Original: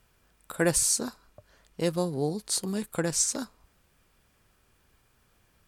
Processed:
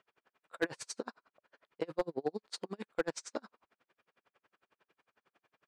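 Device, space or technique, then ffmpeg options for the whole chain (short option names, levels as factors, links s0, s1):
helicopter radio: -af "highpass=370,lowpass=2700,aeval=exprs='val(0)*pow(10,-40*(0.5-0.5*cos(2*PI*11*n/s))/20)':c=same,asoftclip=type=hard:threshold=0.0473,volume=1.5"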